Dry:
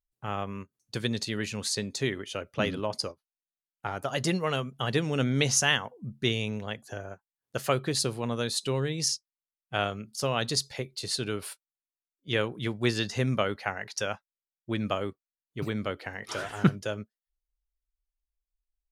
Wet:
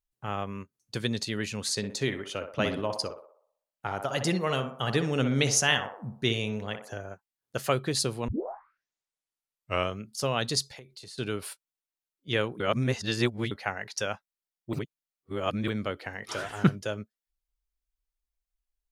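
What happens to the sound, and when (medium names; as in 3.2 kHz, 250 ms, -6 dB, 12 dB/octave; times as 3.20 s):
1.62–6.97 s: band-passed feedback delay 61 ms, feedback 55%, band-pass 770 Hz, level -6 dB
8.28 s: tape start 1.72 s
10.67–11.18 s: compression 12:1, threshold -42 dBFS
12.60–13.51 s: reverse
14.73–15.68 s: reverse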